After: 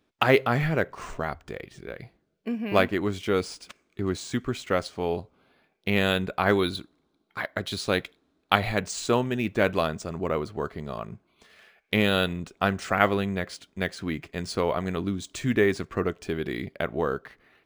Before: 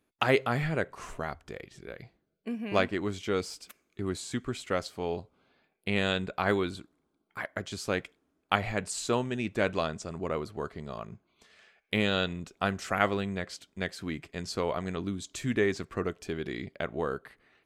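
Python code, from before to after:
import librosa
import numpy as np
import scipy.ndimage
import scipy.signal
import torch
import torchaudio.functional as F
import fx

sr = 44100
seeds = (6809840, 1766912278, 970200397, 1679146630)

y = fx.peak_eq(x, sr, hz=3900.0, db=11.5, octaves=0.33, at=(6.59, 8.8))
y = np.interp(np.arange(len(y)), np.arange(len(y))[::3], y[::3])
y = y * 10.0 ** (5.0 / 20.0)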